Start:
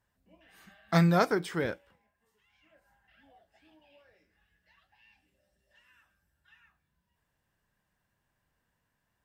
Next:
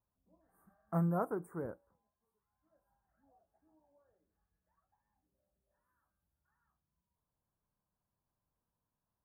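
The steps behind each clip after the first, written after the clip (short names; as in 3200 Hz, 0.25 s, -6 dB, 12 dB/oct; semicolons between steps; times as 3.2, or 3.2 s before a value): Chebyshev band-stop 1200–9800 Hz, order 3; gain -8.5 dB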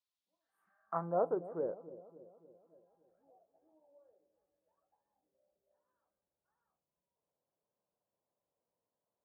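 band-pass sweep 3900 Hz -> 530 Hz, 0.49–1.2; dark delay 0.284 s, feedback 52%, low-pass 570 Hz, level -13 dB; gain +8 dB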